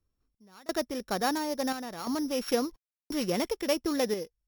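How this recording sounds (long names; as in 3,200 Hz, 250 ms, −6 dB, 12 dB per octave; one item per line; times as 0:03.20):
a buzz of ramps at a fixed pitch in blocks of 8 samples
sample-and-hold tremolo 2.9 Hz, depth 100%
AAC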